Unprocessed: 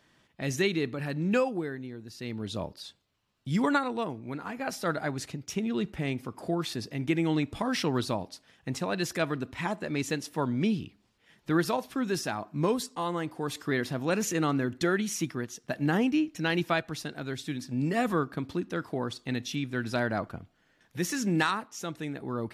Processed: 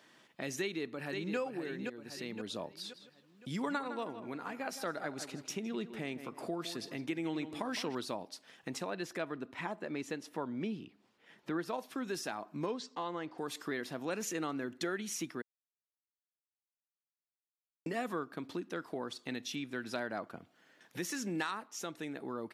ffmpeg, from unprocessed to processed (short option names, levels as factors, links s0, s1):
-filter_complex "[0:a]asplit=2[s0][s1];[s1]afade=t=in:st=0.6:d=0.01,afade=t=out:st=1.37:d=0.01,aecho=0:1:520|1040|1560|2080:0.446684|0.156339|0.0547187|0.0191516[s2];[s0][s2]amix=inputs=2:normalize=0,asettb=1/sr,asplit=3[s3][s4][s5];[s3]atrim=end=2.784[s6];[s4]atrim=start=2.78:end=7.95,asetpts=PTS-STARTPTS,afade=t=in:d=0.004:c=qsin,afade=t=out:st=5.166:d=0.004:c=qsin,asplit=2[s7][s8];[s8]adelay=160,lowpass=f=3300:p=1,volume=0.237,asplit=2[s9][s10];[s10]adelay=160,lowpass=f=3300:p=1,volume=0.31,asplit=2[s11][s12];[s12]adelay=160,lowpass=f=3300:p=1,volume=0.31[s13];[s7][s9][s11][s13]amix=inputs=4:normalize=0,atrim=end_sample=227997[s14];[s5]atrim=start=7.946[s15];[s6][s14]acrossfade=d=0.004:c1=hsin:c2=qsin[s16];[s16][s15]acrossfade=d=0.004:c1=qsin:c2=hsin,asettb=1/sr,asplit=3[s17][s18][s19];[s17]atrim=end=8.904[s20];[s18]atrim=start=8.9:end=11.74,asetpts=PTS-STARTPTS,afade=t=in:d=0.004:c=qsin,afade=t=out:st=2.836:d=0.004:c=qsin,highshelf=f=3400:g=-9.5[s21];[s19]atrim=start=11.736[s22];[s20][s21]acrossfade=d=0.004:c1=hsin:c2=qsin[s23];[s23][s22]acrossfade=d=0.004:c1=qsin:c2=hsin,asettb=1/sr,asplit=3[s24][s25][s26];[s24]atrim=end=12.664[s27];[s25]atrim=start=12.66:end=13.38,asetpts=PTS-STARTPTS,afade=t=in:d=0.004:c=qsin,afade=t=out:st=0.716:d=0.004:c=qsin,lowpass=f=5900:w=0.5412,lowpass=f=5900:w=1.3066[s28];[s26]atrim=start=13.376[s29];[s27][s28]acrossfade=d=0.004:c1=hsin:c2=qsin[s30];[s30][s29]acrossfade=d=0.004:c1=qsin:c2=hsin,asplit=3[s31][s32][s33];[s31]atrim=end=15.42,asetpts=PTS-STARTPTS,afade=t=out:st=15.416:d=0.004:c=hsin[s34];[s32]atrim=start=15.42:end=17.86,asetpts=PTS-STARTPTS,volume=0[s35];[s33]atrim=start=17.86,asetpts=PTS-STARTPTS,afade=t=in:d=0.004:c=hsin[s36];[s34][s35][s36]concat=n=3:v=0:a=1,highpass=240,acompressor=threshold=0.00501:ratio=2,volume=1.41"